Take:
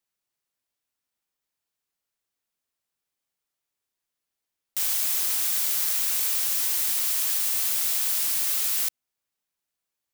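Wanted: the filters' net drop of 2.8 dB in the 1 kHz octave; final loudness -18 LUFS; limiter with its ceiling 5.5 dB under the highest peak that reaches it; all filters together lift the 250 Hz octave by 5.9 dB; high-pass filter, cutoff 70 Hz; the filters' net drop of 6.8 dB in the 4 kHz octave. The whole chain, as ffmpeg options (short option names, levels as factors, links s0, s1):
-af "highpass=70,equalizer=f=250:t=o:g=8,equalizer=f=1000:t=o:g=-3.5,equalizer=f=4000:t=o:g=-9,volume=2.24,alimiter=limit=0.282:level=0:latency=1"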